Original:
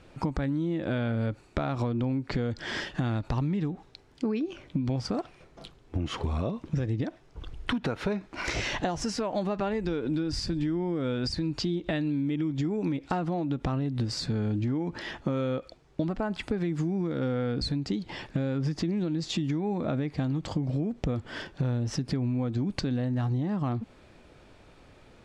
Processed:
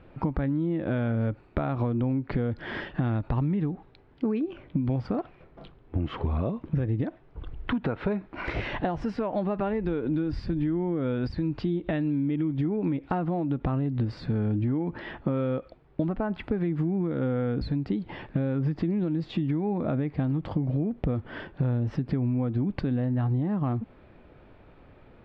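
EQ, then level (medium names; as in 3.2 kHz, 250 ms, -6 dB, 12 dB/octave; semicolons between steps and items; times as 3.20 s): distance through air 450 m; +2.5 dB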